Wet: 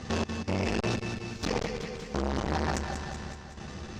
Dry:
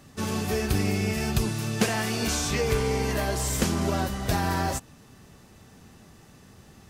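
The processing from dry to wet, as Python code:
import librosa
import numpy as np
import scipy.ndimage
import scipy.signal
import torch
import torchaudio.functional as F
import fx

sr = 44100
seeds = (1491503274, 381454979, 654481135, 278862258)

p1 = scipy.signal.sosfilt(scipy.signal.butter(4, 6200.0, 'lowpass', fs=sr, output='sos'), x)
p2 = fx.over_compress(p1, sr, threshold_db=-33.0, ratio=-1.0)
p3 = p1 + F.gain(torch.from_numpy(p2), 2.0).numpy()
p4 = fx.fold_sine(p3, sr, drive_db=4, ceiling_db=-10.5)
p5 = fx.stretch_grains(p4, sr, factor=0.58, grain_ms=27.0)
p6 = fx.comb_fb(p5, sr, f0_hz=71.0, decay_s=0.19, harmonics='odd', damping=0.0, mix_pct=70)
p7 = fx.step_gate(p6, sr, bpm=63, pattern='x.xx..x..xxxx', floor_db=-24.0, edge_ms=4.5)
p8 = fx.echo_feedback(p7, sr, ms=189, feedback_pct=57, wet_db=-9.0)
y = fx.transformer_sat(p8, sr, knee_hz=810.0)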